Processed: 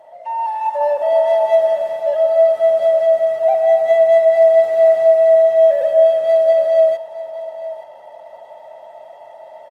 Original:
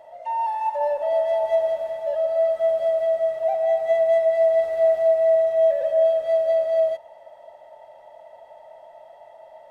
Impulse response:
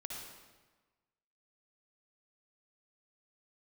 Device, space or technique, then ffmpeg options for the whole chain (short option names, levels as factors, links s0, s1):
video call: -af "highpass=130,aecho=1:1:867:0.168,dynaudnorm=f=300:g=5:m=1.78,volume=1.33" -ar 48000 -c:a libopus -b:a 20k